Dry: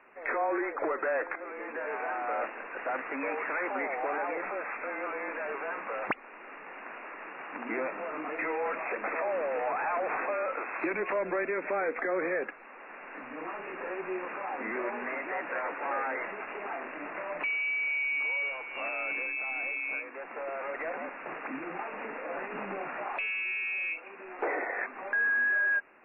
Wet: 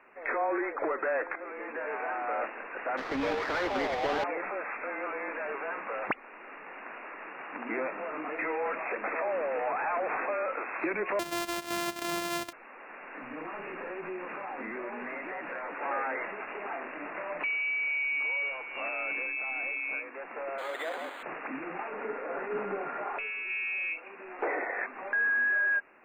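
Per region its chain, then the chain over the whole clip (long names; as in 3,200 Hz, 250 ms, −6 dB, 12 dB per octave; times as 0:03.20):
0:02.97–0:04.24: each half-wave held at its own peak + high-frequency loss of the air 220 metres
0:11.19–0:12.53: samples sorted by size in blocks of 128 samples + low-shelf EQ 290 Hz −12 dB
0:13.21–0:15.75: bass and treble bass +6 dB, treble +6 dB + downward compressor 3 to 1, threshold −35 dBFS
0:20.58–0:21.23: high-pass filter 270 Hz 24 dB per octave + high-shelf EQ 2,400 Hz +9 dB + linearly interpolated sample-rate reduction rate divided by 8×
0:21.90–0:23.50: low-pass filter 2,300 Hz + hollow resonant body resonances 420/1,400 Hz, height 12 dB, ringing for 100 ms
whole clip: no processing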